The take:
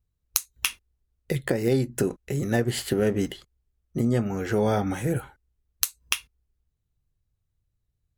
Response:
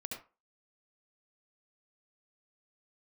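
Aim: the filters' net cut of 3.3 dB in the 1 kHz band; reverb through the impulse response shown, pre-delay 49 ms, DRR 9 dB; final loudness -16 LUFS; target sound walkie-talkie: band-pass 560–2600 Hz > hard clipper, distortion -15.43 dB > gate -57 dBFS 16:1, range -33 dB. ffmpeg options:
-filter_complex "[0:a]equalizer=f=1000:t=o:g=-3.5,asplit=2[s0][s1];[1:a]atrim=start_sample=2205,adelay=49[s2];[s1][s2]afir=irnorm=-1:irlink=0,volume=0.398[s3];[s0][s3]amix=inputs=2:normalize=0,highpass=560,lowpass=2600,asoftclip=type=hard:threshold=0.0708,agate=range=0.0224:threshold=0.00141:ratio=16,volume=9.44"

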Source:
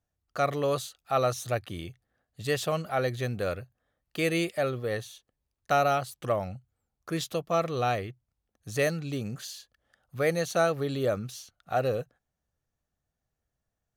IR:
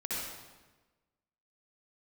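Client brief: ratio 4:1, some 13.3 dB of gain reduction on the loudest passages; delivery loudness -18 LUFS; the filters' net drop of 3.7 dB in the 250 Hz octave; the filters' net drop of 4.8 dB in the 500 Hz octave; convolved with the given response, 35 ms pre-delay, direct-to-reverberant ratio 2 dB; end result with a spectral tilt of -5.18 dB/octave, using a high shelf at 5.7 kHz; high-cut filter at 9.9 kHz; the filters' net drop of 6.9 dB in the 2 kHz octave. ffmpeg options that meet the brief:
-filter_complex "[0:a]lowpass=9900,equalizer=f=250:t=o:g=-4,equalizer=f=500:t=o:g=-4.5,equalizer=f=2000:t=o:g=-8.5,highshelf=f=5700:g=-4,acompressor=threshold=0.00891:ratio=4,asplit=2[s0][s1];[1:a]atrim=start_sample=2205,adelay=35[s2];[s1][s2]afir=irnorm=-1:irlink=0,volume=0.473[s3];[s0][s3]amix=inputs=2:normalize=0,volume=17.8"

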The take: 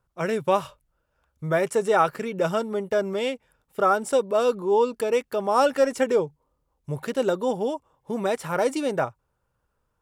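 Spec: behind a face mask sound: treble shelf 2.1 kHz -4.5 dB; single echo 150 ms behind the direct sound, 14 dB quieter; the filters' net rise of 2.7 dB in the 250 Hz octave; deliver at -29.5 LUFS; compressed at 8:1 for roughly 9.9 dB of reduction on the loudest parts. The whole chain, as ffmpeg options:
-af "equalizer=f=250:t=o:g=3.5,acompressor=threshold=0.0562:ratio=8,highshelf=f=2100:g=-4.5,aecho=1:1:150:0.2,volume=1.19"

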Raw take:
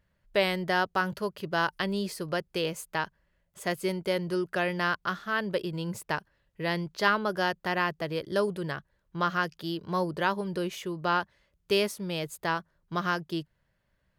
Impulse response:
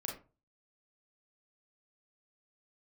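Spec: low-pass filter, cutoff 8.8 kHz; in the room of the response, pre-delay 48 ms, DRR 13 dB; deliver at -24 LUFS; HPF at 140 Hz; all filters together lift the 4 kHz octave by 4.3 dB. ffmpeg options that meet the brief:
-filter_complex "[0:a]highpass=140,lowpass=8800,equalizer=f=4000:t=o:g=6,asplit=2[s0][s1];[1:a]atrim=start_sample=2205,adelay=48[s2];[s1][s2]afir=irnorm=-1:irlink=0,volume=0.224[s3];[s0][s3]amix=inputs=2:normalize=0,volume=1.88"

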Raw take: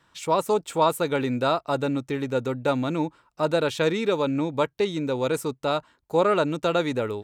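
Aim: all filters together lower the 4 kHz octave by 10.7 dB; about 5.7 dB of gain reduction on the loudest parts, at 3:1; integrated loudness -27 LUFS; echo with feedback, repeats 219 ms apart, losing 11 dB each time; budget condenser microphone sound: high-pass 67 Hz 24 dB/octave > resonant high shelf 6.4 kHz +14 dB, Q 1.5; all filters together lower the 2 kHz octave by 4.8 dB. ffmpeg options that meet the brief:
-af "equalizer=f=2000:t=o:g=-4,equalizer=f=4000:t=o:g=-8,acompressor=threshold=0.0562:ratio=3,highpass=f=67:w=0.5412,highpass=f=67:w=1.3066,highshelf=f=6400:t=q:w=1.5:g=14,aecho=1:1:219|438|657:0.282|0.0789|0.0221,volume=1.19"

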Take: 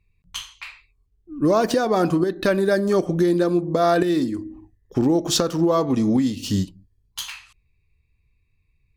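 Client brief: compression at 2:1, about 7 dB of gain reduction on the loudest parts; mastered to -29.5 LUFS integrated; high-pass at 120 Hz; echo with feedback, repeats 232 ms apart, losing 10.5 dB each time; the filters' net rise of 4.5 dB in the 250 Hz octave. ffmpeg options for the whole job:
-af "highpass=120,equalizer=f=250:t=o:g=6.5,acompressor=threshold=0.0631:ratio=2,aecho=1:1:232|464|696:0.299|0.0896|0.0269,volume=0.531"

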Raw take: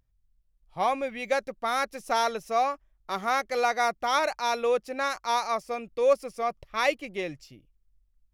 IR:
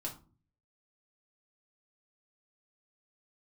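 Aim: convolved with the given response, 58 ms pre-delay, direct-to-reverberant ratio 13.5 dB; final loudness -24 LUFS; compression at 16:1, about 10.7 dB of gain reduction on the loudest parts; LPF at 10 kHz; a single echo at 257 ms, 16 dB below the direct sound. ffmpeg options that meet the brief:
-filter_complex "[0:a]lowpass=10000,acompressor=threshold=0.0398:ratio=16,aecho=1:1:257:0.158,asplit=2[s0][s1];[1:a]atrim=start_sample=2205,adelay=58[s2];[s1][s2]afir=irnorm=-1:irlink=0,volume=0.224[s3];[s0][s3]amix=inputs=2:normalize=0,volume=3.16"

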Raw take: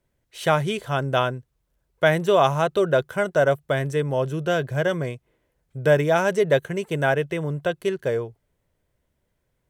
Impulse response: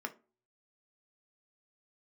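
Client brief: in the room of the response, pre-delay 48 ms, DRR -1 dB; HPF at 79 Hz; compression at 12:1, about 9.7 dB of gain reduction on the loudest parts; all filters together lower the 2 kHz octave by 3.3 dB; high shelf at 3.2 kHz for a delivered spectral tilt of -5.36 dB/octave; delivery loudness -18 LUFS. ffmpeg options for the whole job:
-filter_complex "[0:a]highpass=79,equalizer=f=2000:t=o:g=-6,highshelf=f=3200:g=4,acompressor=threshold=0.0708:ratio=12,asplit=2[s0][s1];[1:a]atrim=start_sample=2205,adelay=48[s2];[s1][s2]afir=irnorm=-1:irlink=0,volume=0.944[s3];[s0][s3]amix=inputs=2:normalize=0,volume=2.51"

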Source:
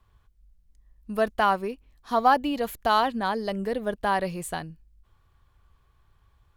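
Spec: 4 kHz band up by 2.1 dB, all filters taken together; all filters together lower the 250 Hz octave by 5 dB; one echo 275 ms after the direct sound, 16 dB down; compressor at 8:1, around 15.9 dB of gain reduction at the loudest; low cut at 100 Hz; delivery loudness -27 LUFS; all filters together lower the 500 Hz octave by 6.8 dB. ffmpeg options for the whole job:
-af "highpass=100,equalizer=f=250:t=o:g=-4,equalizer=f=500:t=o:g=-8.5,equalizer=f=4000:t=o:g=3,acompressor=threshold=0.0224:ratio=8,aecho=1:1:275:0.158,volume=3.76"

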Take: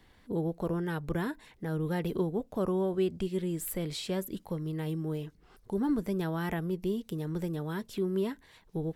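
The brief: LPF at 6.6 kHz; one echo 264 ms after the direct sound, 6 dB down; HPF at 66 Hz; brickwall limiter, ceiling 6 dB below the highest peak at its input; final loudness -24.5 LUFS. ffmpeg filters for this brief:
-af "highpass=66,lowpass=6600,alimiter=level_in=1.26:limit=0.0631:level=0:latency=1,volume=0.794,aecho=1:1:264:0.501,volume=3.16"

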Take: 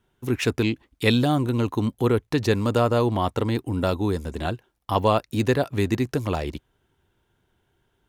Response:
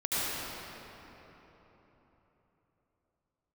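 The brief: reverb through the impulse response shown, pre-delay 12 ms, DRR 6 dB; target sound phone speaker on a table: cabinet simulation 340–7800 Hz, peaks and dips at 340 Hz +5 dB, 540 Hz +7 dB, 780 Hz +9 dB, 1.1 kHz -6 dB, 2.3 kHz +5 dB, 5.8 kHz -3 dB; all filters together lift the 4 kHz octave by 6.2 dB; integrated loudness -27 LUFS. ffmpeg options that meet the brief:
-filter_complex "[0:a]equalizer=f=4000:t=o:g=7,asplit=2[s0][s1];[1:a]atrim=start_sample=2205,adelay=12[s2];[s1][s2]afir=irnorm=-1:irlink=0,volume=0.15[s3];[s0][s3]amix=inputs=2:normalize=0,highpass=f=340:w=0.5412,highpass=f=340:w=1.3066,equalizer=f=340:t=q:w=4:g=5,equalizer=f=540:t=q:w=4:g=7,equalizer=f=780:t=q:w=4:g=9,equalizer=f=1100:t=q:w=4:g=-6,equalizer=f=2300:t=q:w=4:g=5,equalizer=f=5800:t=q:w=4:g=-3,lowpass=f=7800:w=0.5412,lowpass=f=7800:w=1.3066,volume=0.501"

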